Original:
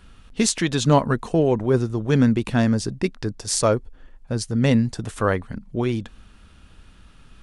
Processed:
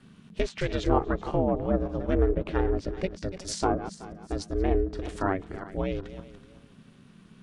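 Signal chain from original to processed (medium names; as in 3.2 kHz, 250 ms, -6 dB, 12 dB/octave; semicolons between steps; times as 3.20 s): backward echo that repeats 188 ms, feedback 48%, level -12.5 dB; ring modulator 190 Hz; low-pass that closes with the level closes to 1.3 kHz, closed at -16.5 dBFS; trim -3.5 dB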